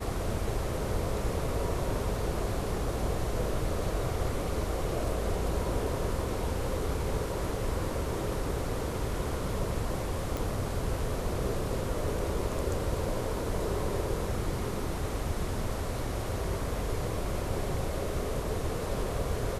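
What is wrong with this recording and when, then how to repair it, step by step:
10.37 pop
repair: de-click

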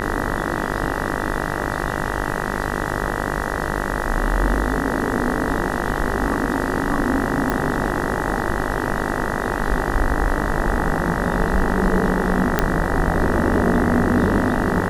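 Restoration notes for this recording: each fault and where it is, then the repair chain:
buzz 50 Hz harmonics 39 -25 dBFS
7.5 pop
12.59 pop -2 dBFS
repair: de-click; de-hum 50 Hz, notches 39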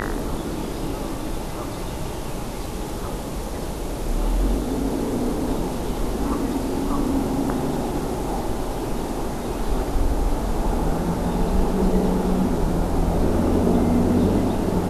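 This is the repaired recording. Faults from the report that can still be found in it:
none

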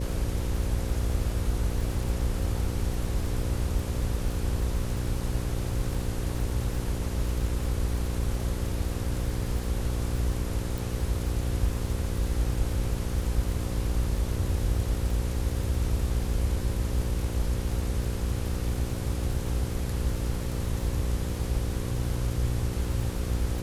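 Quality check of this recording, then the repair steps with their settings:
buzz 60 Hz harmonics 9 -32 dBFS
crackle 48/s -34 dBFS
10.78 pop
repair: de-click; de-hum 60 Hz, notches 9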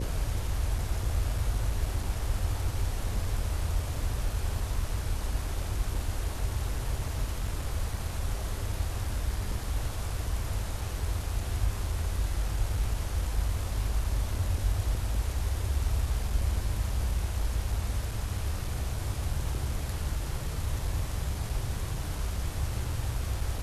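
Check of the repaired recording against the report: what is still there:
none

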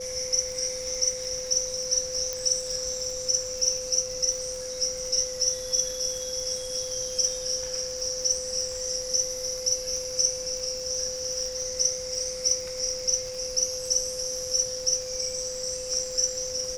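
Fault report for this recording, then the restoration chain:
crackle 52/s -34 dBFS
tone 510 Hz -34 dBFS
2.33 pop -15 dBFS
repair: de-click; notch 510 Hz, Q 30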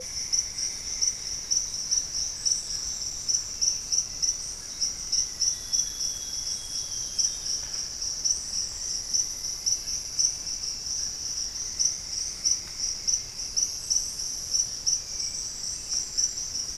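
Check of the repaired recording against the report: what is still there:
none

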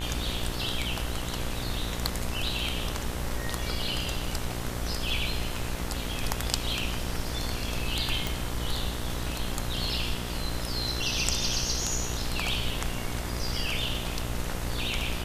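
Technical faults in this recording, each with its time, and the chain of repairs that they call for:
buzz 60 Hz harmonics 36 -35 dBFS
8.27 pop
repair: de-click; de-hum 60 Hz, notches 36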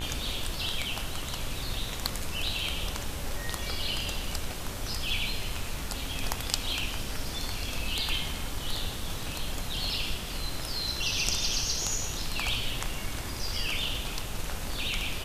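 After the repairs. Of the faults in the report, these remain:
none

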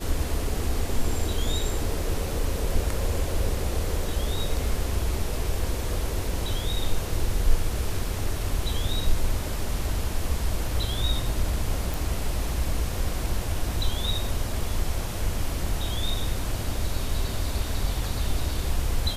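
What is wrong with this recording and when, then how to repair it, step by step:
11.94 pop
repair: de-click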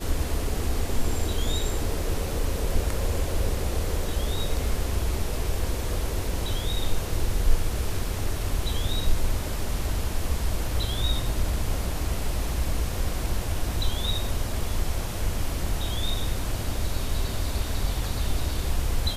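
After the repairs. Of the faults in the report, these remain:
none

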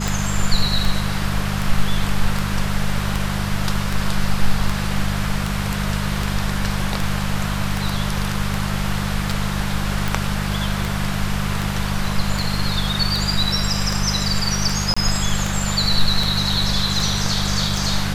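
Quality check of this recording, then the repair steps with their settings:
hum 50 Hz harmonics 4 -24 dBFS
tick 78 rpm
14.94–14.96 gap 25 ms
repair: de-click; de-hum 50 Hz, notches 4; interpolate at 14.94, 25 ms

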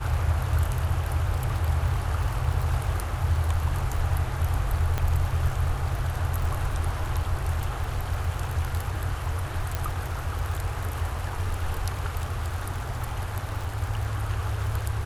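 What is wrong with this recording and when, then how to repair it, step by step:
crackle 32/s -30 dBFS
4.98 pop -13 dBFS
9.75 pop -13 dBFS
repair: de-click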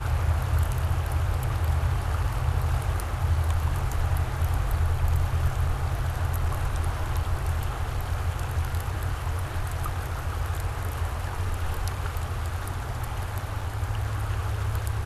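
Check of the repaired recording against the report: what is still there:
none

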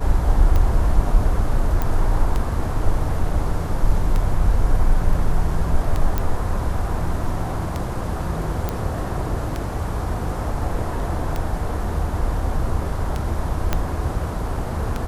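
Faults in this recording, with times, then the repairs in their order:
tick 33 1/3 rpm -11 dBFS
1.82 pop -10 dBFS
6.18 pop -8 dBFS
8.69 pop -10 dBFS
13.73 pop -6 dBFS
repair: de-click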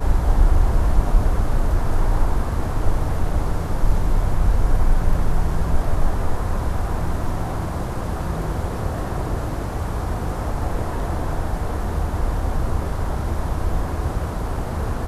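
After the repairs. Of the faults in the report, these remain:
13.73 pop

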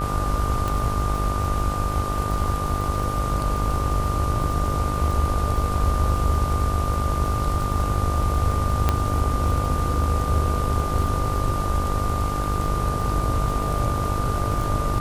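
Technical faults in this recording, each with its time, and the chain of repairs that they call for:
buzz 50 Hz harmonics 30 -27 dBFS
crackle 34/s -28 dBFS
tone 1200 Hz -28 dBFS
0.68 pop
8.89 pop -6 dBFS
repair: de-click; notch 1200 Hz, Q 30; de-hum 50 Hz, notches 30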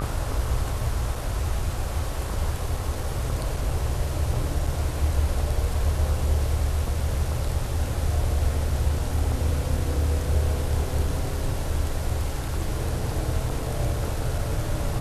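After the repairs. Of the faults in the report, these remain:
none

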